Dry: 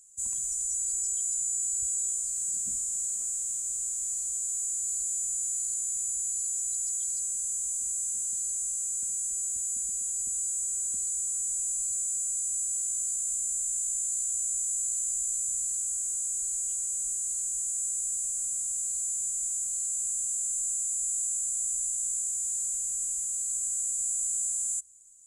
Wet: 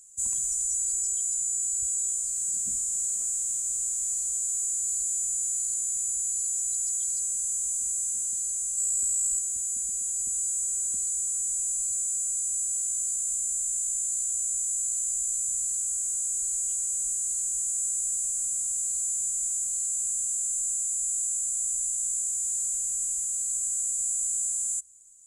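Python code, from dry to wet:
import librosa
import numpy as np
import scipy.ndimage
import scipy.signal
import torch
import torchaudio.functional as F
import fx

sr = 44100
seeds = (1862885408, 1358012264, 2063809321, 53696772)

y = fx.comb(x, sr, ms=2.8, depth=0.98, at=(8.77, 9.39))
y = fx.rider(y, sr, range_db=10, speed_s=2.0)
y = F.gain(torch.from_numpy(y), 2.0).numpy()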